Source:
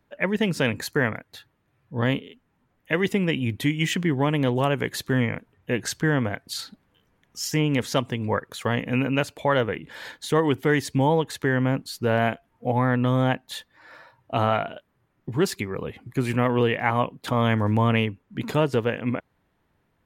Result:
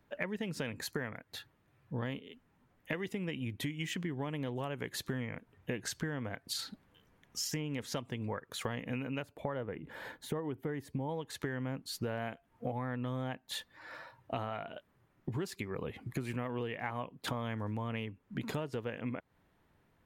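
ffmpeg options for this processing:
-filter_complex "[0:a]asettb=1/sr,asplit=3[a][b][c];[a]atrim=end=9.224[d];[b]atrim=start=9.22:end=11.09,asetpts=PTS-STARTPTS,afade=t=in:d=0.004:c=qsin,afade=t=out:st=1.866:d=0.004:c=qsin,equalizer=f=5.3k:t=o:w=2.7:g=-14.5[e];[c]atrim=start=11.086[f];[d][e]acrossfade=d=0.004:c1=hsin:c2=qsin[g];[g][f]acrossfade=d=0.004:c1=qsin:c2=hsin,acompressor=threshold=-33dB:ratio=12,volume=-1dB"

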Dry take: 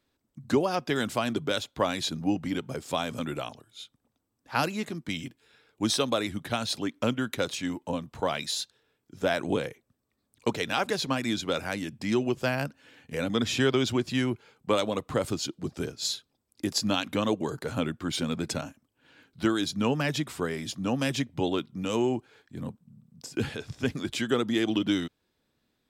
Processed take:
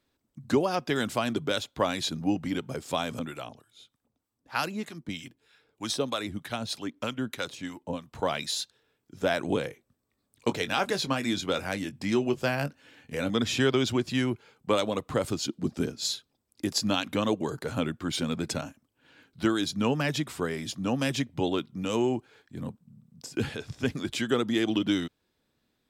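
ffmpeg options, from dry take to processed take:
-filter_complex "[0:a]asettb=1/sr,asplit=3[a][b][c];[a]atrim=end=3.194[d];[b]atrim=start=3.19:end=8.13,asetpts=PTS-STARTPTS,afade=t=in:d=0.004:c=qsin,afade=t=out:st=4.936:d=0.004:c=qsin,acrossover=split=820[e][f];[e]aeval=exprs='val(0)*(1-0.7/2+0.7/2*cos(2*PI*3.2*n/s))':c=same[g];[f]aeval=exprs='val(0)*(1-0.7/2-0.7/2*cos(2*PI*3.2*n/s))':c=same[h];[g][h]amix=inputs=2:normalize=0[i];[c]atrim=start=8.126[j];[d][i]acrossfade=d=0.004:c1=hsin:c2=qsin[k];[k][j]acrossfade=d=0.004:c1=qsin:c2=hsin,asettb=1/sr,asplit=3[l][m][n];[l]atrim=end=9.674[o];[m]atrim=start=9.67:end=13.3,asetpts=PTS-STARTPTS,afade=t=in:d=0.004:c=qsin,afade=t=out:st=3.626:d=0.004:c=qsin,asplit=2[p][q];[q]adelay=21,volume=-11.5dB[r];[p][r]amix=inputs=2:normalize=0,atrim=end_sample=160083[s];[n]atrim=start=13.296[t];[o][s]acrossfade=d=0.004:c1=hsin:c2=qsin[u];[u][t]acrossfade=d=0.004:c1=qsin:c2=hsin,asettb=1/sr,asplit=3[v][w][x];[v]atrim=end=15.484[y];[w]atrim=start=15.48:end=16.01,asetpts=PTS-STARTPTS,afade=t=in:d=0.004:c=qsin,afade=t=out:st=0.526:d=0.004:c=qsin,equalizer=f=230:t=o:w=0.77:g=8[z];[x]atrim=start=16.006[aa];[y][z]acrossfade=d=0.004:c1=hsin:c2=qsin[ab];[ab][aa]acrossfade=d=0.004:c1=qsin:c2=hsin"

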